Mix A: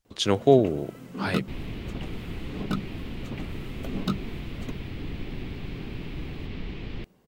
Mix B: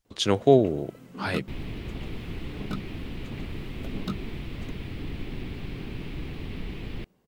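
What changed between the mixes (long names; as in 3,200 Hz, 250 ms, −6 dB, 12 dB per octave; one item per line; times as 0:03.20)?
first sound −5.0 dB
second sound: remove low-pass filter 6,300 Hz 24 dB per octave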